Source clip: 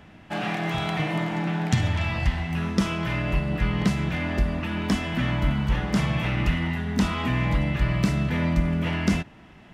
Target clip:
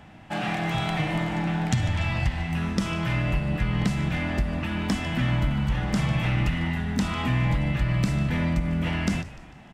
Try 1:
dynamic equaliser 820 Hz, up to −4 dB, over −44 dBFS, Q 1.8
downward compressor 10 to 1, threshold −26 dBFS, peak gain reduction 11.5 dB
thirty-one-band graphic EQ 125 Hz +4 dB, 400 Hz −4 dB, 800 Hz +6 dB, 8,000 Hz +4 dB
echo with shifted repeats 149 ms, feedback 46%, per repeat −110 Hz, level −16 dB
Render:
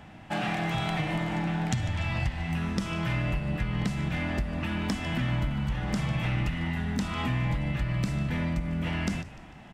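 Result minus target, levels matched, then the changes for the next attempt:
downward compressor: peak gain reduction +5.5 dB
change: downward compressor 10 to 1, threshold −20 dBFS, peak gain reduction 6 dB

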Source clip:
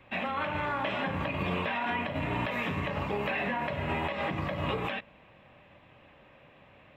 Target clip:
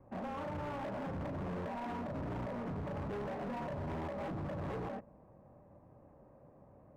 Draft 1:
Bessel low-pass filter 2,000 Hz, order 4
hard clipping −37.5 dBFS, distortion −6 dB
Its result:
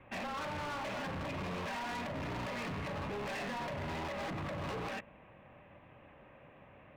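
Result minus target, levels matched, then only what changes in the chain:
2,000 Hz band +7.5 dB
change: Bessel low-pass filter 670 Hz, order 4

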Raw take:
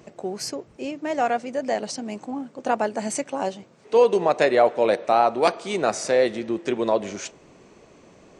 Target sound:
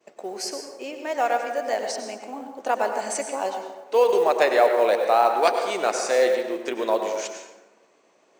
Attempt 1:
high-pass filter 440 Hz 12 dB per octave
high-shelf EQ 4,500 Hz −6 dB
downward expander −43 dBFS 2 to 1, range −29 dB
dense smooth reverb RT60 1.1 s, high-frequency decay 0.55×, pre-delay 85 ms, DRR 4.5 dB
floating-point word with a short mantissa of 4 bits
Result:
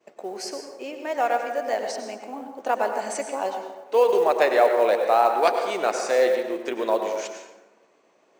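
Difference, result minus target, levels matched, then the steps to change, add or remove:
8,000 Hz band −4.0 dB
remove: high-shelf EQ 4,500 Hz −6 dB

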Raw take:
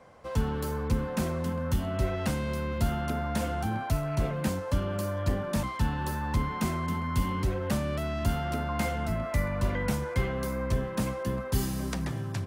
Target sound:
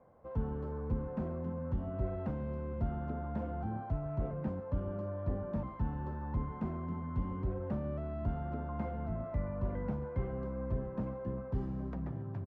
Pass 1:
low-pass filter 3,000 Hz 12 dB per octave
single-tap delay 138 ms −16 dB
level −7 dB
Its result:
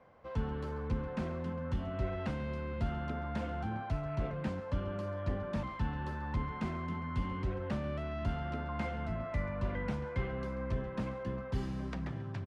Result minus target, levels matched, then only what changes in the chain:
4,000 Hz band +18.0 dB
change: low-pass filter 910 Hz 12 dB per octave

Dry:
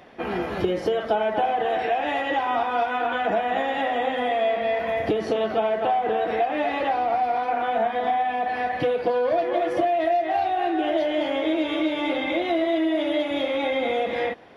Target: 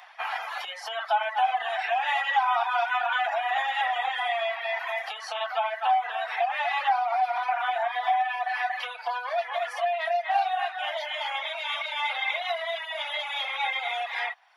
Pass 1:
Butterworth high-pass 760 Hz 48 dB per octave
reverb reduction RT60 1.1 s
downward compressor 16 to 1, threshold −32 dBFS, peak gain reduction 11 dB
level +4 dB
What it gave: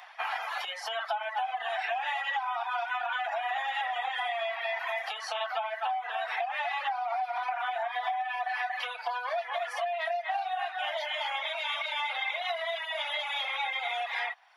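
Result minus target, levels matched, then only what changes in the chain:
downward compressor: peak gain reduction +11 dB
remove: downward compressor 16 to 1, threshold −32 dBFS, peak gain reduction 11 dB

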